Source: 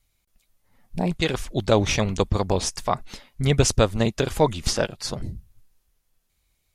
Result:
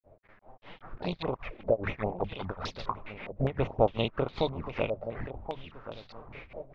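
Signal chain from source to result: spectral levelling over time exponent 0.6; recorder AGC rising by 8.3 dB/s; bass shelf 300 Hz -4.5 dB; hum notches 50/100/150/200 Hz; in parallel at -2 dB: compression 10:1, threshold -33 dBFS, peak gain reduction 21 dB; on the sum: granulator 210 ms, grains 5.1 per s, spray 16 ms, pitch spread up and down by 0 st; word length cut 8-bit, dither none; touch-sensitive flanger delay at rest 11.9 ms, full sweep at -18.5 dBFS; distance through air 220 m; feedback delay 1078 ms, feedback 31%, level -12.5 dB; step-sequenced low-pass 4.9 Hz 610–4100 Hz; trim -8 dB

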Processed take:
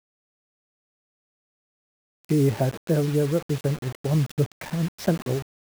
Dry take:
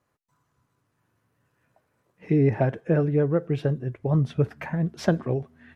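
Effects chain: dynamic bell 1.6 kHz, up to -5 dB, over -40 dBFS, Q 0.72; word length cut 6-bit, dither none

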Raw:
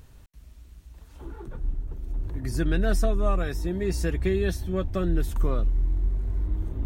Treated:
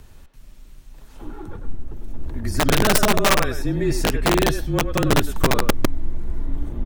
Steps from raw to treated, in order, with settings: frequency shift -31 Hz; speakerphone echo 100 ms, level -7 dB; integer overflow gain 16.5 dB; trim +6 dB

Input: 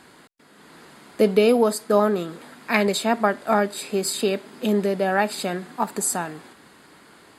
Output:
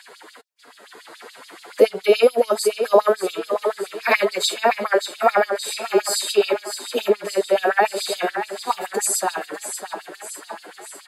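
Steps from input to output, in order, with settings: in parallel at 0 dB: compression, threshold -30 dBFS, peak gain reduction 16.5 dB; on the sum: feedback delay 400 ms, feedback 57%, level -9.5 dB; time stretch by phase-locked vocoder 1.5×; LFO high-pass sine 7 Hz 370–4800 Hz; trim -1 dB

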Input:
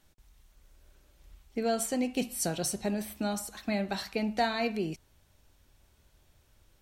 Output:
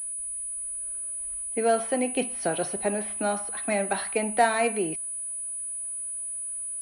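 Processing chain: three-band isolator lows -13 dB, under 320 Hz, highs -15 dB, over 3.2 kHz; class-D stage that switches slowly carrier 9.9 kHz; trim +8 dB

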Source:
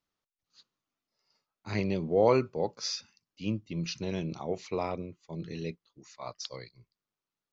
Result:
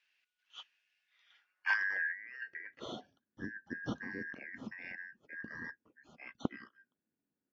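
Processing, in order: four frequency bands reordered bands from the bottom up 3142; bass shelf 380 Hz +9 dB; compressor with a negative ratio -34 dBFS, ratio -1; band-pass sweep 2.7 kHz -> 250 Hz, 0.99–2.85 s; trim +11.5 dB

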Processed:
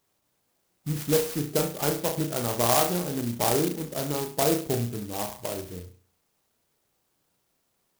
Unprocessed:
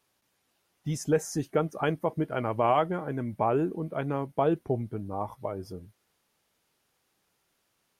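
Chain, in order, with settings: on a send: flutter echo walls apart 5.8 m, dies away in 0.42 s; on the sum: sampling jitter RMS 0.15 ms

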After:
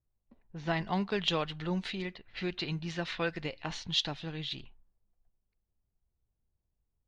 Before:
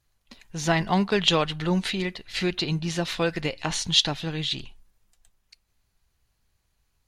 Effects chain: low-pass 5.1 kHz 12 dB/octave; level-controlled noise filter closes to 570 Hz, open at -23 dBFS; 2.59–3.29 s: dynamic bell 1.8 kHz, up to +6 dB, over -42 dBFS, Q 1.1; trim -9 dB

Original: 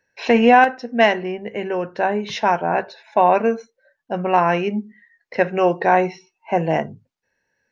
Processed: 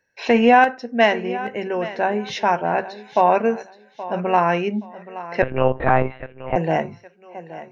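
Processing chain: on a send: thinning echo 824 ms, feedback 28%, high-pass 170 Hz, level -15 dB; 5.42–6.56 s: on the sum: monotone LPC vocoder at 8 kHz 130 Hz; trim -1 dB

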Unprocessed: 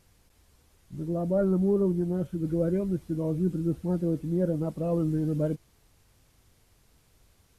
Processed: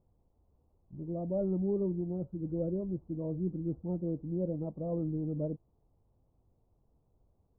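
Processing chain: inverse Chebyshev low-pass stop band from 1.8 kHz, stop band 40 dB; trim -7 dB

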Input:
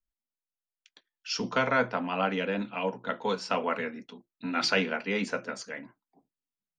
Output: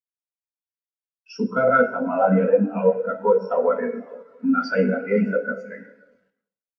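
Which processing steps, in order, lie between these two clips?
fifteen-band graphic EQ 100 Hz -4 dB, 630 Hz +3 dB, 1.6 kHz +4 dB, 4 kHz -10 dB; in parallel at -3 dB: compression 6:1, threshold -35 dBFS, peak gain reduction 16.5 dB; on the sum: echo that smears into a reverb 526 ms, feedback 42%, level -12 dB; waveshaping leveller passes 3; bit crusher 5-bit; plate-style reverb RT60 1.5 s, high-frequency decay 0.8×, DRR 1.5 dB; spectral contrast expander 2.5:1; trim -5 dB

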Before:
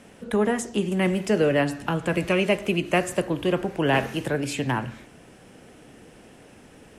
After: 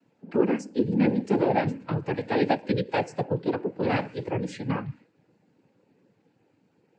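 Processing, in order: one-sided wavefolder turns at -15 dBFS; noise-vocoded speech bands 8; spectral contrast expander 1.5:1

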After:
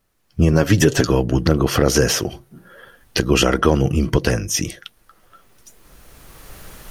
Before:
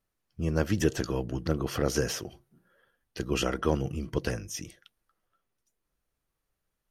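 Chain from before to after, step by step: recorder AGC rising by 13 dB/s; 0.52–1.07 s: comb 7.3 ms, depth 53%; loudness maximiser +14 dB; trim -1 dB

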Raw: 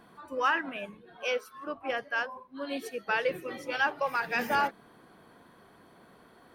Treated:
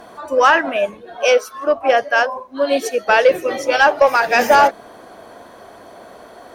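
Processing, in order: fifteen-band graphic EQ 160 Hz -9 dB, 630 Hz +11 dB, 6.3 kHz +9 dB; in parallel at -5.5 dB: sine folder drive 4 dB, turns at -12 dBFS; on the sum: trim +6 dB

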